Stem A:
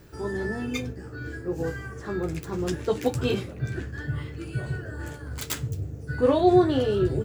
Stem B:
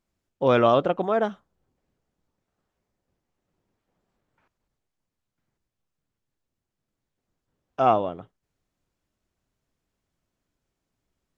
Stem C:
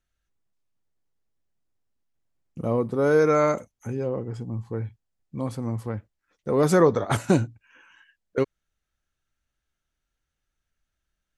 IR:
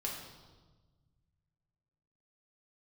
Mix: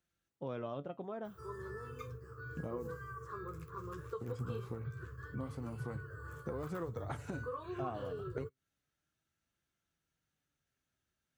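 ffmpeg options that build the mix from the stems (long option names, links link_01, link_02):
-filter_complex "[0:a]firequalizer=gain_entry='entry(140,0);entry(220,-23);entry(450,1);entry(740,-23);entry(1100,12);entry(1900,-11);entry(5300,-8);entry(11000,5)':delay=0.05:min_phase=1,acompressor=threshold=-30dB:ratio=6,equalizer=frequency=10000:width=1.6:gain=-7.5,adelay=1250,volume=-9dB[link_01];[1:a]lowshelf=frequency=280:gain=12,volume=-13.5dB[link_02];[2:a]acompressor=threshold=-29dB:ratio=6,volume=1dB,asplit=3[link_03][link_04][link_05];[link_03]atrim=end=2.92,asetpts=PTS-STARTPTS,afade=type=out:start_time=2.916:duration=0.004:curve=hsin[link_06];[link_04]atrim=start=2.92:end=4.21,asetpts=PTS-STARTPTS,volume=0[link_07];[link_05]atrim=start=4.21,asetpts=PTS-STARTPTS,afade=type=in:duration=0.004:curve=hsin[link_08];[link_06][link_07][link_08]concat=n=3:v=0:a=1[link_09];[link_02][link_09]amix=inputs=2:normalize=0,flanger=delay=5.8:depth=2.3:regen=68:speed=0.31:shape=sinusoidal,acompressor=threshold=-40dB:ratio=3,volume=0dB[link_10];[link_01][link_10]amix=inputs=2:normalize=0,acrossover=split=2800[link_11][link_12];[link_12]acompressor=threshold=-59dB:ratio=4:attack=1:release=60[link_13];[link_11][link_13]amix=inputs=2:normalize=0,highpass=83"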